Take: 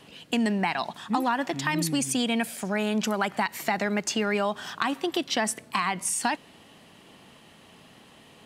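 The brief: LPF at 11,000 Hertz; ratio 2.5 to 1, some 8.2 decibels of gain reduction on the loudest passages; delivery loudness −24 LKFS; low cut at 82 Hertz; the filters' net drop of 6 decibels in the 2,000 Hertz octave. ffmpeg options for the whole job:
ffmpeg -i in.wav -af "highpass=82,lowpass=11000,equalizer=frequency=2000:width_type=o:gain=-7.5,acompressor=threshold=-35dB:ratio=2.5,volume=12dB" out.wav

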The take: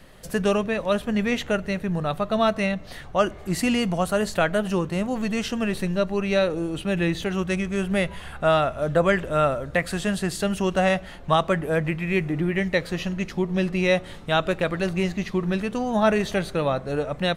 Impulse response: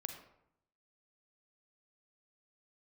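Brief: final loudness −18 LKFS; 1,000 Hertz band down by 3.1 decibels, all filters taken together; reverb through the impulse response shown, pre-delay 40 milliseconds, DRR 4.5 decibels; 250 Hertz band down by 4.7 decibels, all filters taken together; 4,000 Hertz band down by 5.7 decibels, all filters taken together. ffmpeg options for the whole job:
-filter_complex "[0:a]equalizer=frequency=250:width_type=o:gain=-7,equalizer=frequency=1000:width_type=o:gain=-3.5,equalizer=frequency=4000:width_type=o:gain=-7.5,asplit=2[link_01][link_02];[1:a]atrim=start_sample=2205,adelay=40[link_03];[link_02][link_03]afir=irnorm=-1:irlink=0,volume=-2.5dB[link_04];[link_01][link_04]amix=inputs=2:normalize=0,volume=8dB"

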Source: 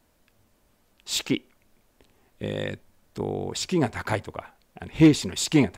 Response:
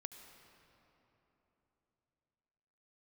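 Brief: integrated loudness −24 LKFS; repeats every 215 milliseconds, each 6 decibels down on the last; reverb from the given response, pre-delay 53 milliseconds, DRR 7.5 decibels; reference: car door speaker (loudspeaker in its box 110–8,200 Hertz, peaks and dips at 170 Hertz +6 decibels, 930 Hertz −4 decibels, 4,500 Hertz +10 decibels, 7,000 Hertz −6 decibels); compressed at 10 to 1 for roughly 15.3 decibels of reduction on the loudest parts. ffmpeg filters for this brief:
-filter_complex "[0:a]acompressor=threshold=-26dB:ratio=10,aecho=1:1:215|430|645|860|1075|1290:0.501|0.251|0.125|0.0626|0.0313|0.0157,asplit=2[link_01][link_02];[1:a]atrim=start_sample=2205,adelay=53[link_03];[link_02][link_03]afir=irnorm=-1:irlink=0,volume=-3dB[link_04];[link_01][link_04]amix=inputs=2:normalize=0,highpass=110,equalizer=frequency=170:width_type=q:width=4:gain=6,equalizer=frequency=930:width_type=q:width=4:gain=-4,equalizer=frequency=4500:width_type=q:width=4:gain=10,equalizer=frequency=7000:width_type=q:width=4:gain=-6,lowpass=frequency=8200:width=0.5412,lowpass=frequency=8200:width=1.3066,volume=6dB"

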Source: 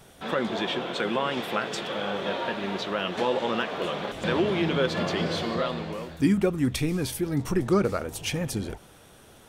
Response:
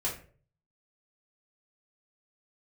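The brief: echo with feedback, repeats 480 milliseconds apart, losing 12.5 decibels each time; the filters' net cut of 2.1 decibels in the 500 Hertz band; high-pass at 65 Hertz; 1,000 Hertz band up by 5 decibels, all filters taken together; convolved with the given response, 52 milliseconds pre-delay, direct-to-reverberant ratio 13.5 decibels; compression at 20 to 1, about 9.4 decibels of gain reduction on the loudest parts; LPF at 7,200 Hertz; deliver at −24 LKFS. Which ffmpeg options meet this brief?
-filter_complex "[0:a]highpass=65,lowpass=7200,equalizer=frequency=500:width_type=o:gain=-4.5,equalizer=frequency=1000:width_type=o:gain=7.5,acompressor=threshold=-27dB:ratio=20,aecho=1:1:480|960|1440:0.237|0.0569|0.0137,asplit=2[link_01][link_02];[1:a]atrim=start_sample=2205,adelay=52[link_03];[link_02][link_03]afir=irnorm=-1:irlink=0,volume=-18.5dB[link_04];[link_01][link_04]amix=inputs=2:normalize=0,volume=8dB"

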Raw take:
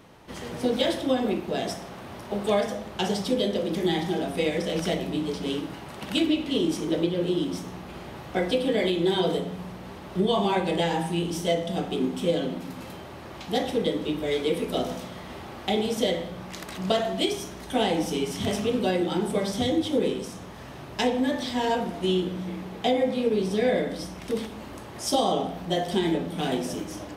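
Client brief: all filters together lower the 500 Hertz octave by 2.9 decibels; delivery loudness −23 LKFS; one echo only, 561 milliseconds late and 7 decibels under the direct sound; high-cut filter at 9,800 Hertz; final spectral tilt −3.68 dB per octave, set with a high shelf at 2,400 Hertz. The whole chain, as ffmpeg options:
ffmpeg -i in.wav -af "lowpass=9800,equalizer=frequency=500:width_type=o:gain=-4,highshelf=frequency=2400:gain=8.5,aecho=1:1:561:0.447,volume=3.5dB" out.wav

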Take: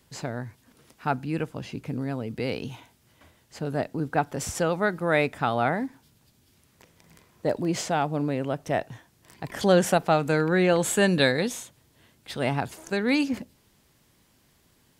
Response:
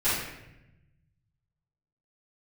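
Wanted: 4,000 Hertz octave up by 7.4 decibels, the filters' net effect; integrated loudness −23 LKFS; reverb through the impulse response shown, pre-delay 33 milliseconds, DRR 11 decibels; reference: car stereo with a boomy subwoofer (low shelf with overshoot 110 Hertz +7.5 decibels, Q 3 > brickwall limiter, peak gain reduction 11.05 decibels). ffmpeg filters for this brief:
-filter_complex "[0:a]equalizer=frequency=4000:width_type=o:gain=8.5,asplit=2[link_01][link_02];[1:a]atrim=start_sample=2205,adelay=33[link_03];[link_02][link_03]afir=irnorm=-1:irlink=0,volume=-24dB[link_04];[link_01][link_04]amix=inputs=2:normalize=0,lowshelf=frequency=110:width_type=q:width=3:gain=7.5,volume=5dB,alimiter=limit=-10dB:level=0:latency=1"

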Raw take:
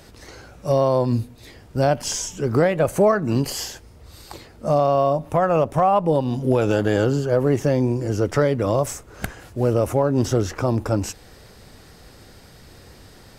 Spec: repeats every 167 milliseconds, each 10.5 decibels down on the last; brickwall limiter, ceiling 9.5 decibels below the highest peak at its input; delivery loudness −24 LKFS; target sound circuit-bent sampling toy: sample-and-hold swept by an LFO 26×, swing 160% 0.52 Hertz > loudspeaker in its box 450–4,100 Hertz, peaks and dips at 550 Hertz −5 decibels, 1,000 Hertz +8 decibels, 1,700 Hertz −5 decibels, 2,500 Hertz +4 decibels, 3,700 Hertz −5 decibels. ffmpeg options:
ffmpeg -i in.wav -af "alimiter=limit=-15dB:level=0:latency=1,aecho=1:1:167|334|501:0.299|0.0896|0.0269,acrusher=samples=26:mix=1:aa=0.000001:lfo=1:lforange=41.6:lforate=0.52,highpass=450,equalizer=frequency=550:width_type=q:width=4:gain=-5,equalizer=frequency=1000:width_type=q:width=4:gain=8,equalizer=frequency=1700:width_type=q:width=4:gain=-5,equalizer=frequency=2500:width_type=q:width=4:gain=4,equalizer=frequency=3700:width_type=q:width=4:gain=-5,lowpass=frequency=4100:width=0.5412,lowpass=frequency=4100:width=1.3066,volume=5dB" out.wav

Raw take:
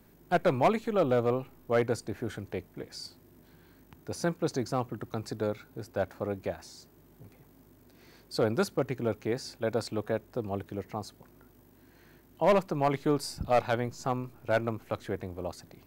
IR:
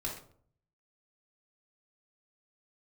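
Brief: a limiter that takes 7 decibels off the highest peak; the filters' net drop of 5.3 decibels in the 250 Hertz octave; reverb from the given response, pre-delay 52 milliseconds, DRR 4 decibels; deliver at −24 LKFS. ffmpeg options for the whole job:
-filter_complex "[0:a]equalizer=frequency=250:width_type=o:gain=-7.5,alimiter=limit=-21.5dB:level=0:latency=1,asplit=2[link_01][link_02];[1:a]atrim=start_sample=2205,adelay=52[link_03];[link_02][link_03]afir=irnorm=-1:irlink=0,volume=-6dB[link_04];[link_01][link_04]amix=inputs=2:normalize=0,volume=10dB"

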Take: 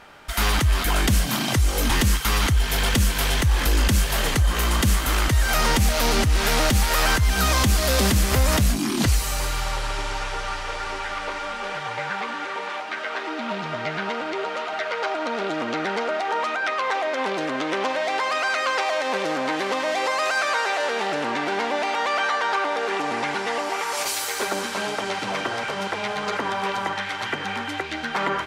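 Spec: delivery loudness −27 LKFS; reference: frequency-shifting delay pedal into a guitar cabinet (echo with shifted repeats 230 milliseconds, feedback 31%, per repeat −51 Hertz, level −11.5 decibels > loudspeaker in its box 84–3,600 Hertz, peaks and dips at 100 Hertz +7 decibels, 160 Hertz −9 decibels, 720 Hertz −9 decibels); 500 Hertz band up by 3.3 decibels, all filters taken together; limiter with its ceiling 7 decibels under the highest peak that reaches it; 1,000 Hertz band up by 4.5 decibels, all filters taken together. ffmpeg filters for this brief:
ffmpeg -i in.wav -filter_complex "[0:a]equalizer=frequency=500:width_type=o:gain=4.5,equalizer=frequency=1000:width_type=o:gain=7,alimiter=limit=-13dB:level=0:latency=1,asplit=4[link_01][link_02][link_03][link_04];[link_02]adelay=230,afreqshift=-51,volume=-11.5dB[link_05];[link_03]adelay=460,afreqshift=-102,volume=-21.7dB[link_06];[link_04]adelay=690,afreqshift=-153,volume=-31.8dB[link_07];[link_01][link_05][link_06][link_07]amix=inputs=4:normalize=0,highpass=84,equalizer=frequency=100:width_type=q:width=4:gain=7,equalizer=frequency=160:width_type=q:width=4:gain=-9,equalizer=frequency=720:width_type=q:width=4:gain=-9,lowpass=frequency=3600:width=0.5412,lowpass=frequency=3600:width=1.3066,volume=-3dB" out.wav

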